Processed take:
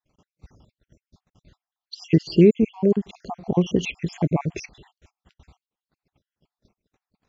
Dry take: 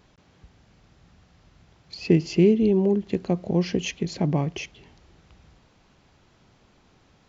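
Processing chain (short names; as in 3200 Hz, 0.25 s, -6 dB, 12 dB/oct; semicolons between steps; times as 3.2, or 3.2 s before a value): random spectral dropouts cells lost 58%; gate -57 dBFS, range -32 dB; gain +4 dB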